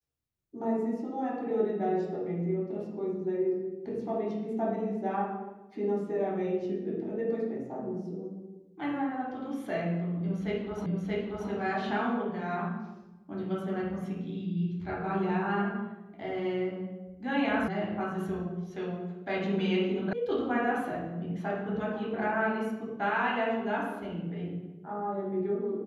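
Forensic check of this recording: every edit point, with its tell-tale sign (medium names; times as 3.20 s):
10.86 s: repeat of the last 0.63 s
17.68 s: sound stops dead
20.13 s: sound stops dead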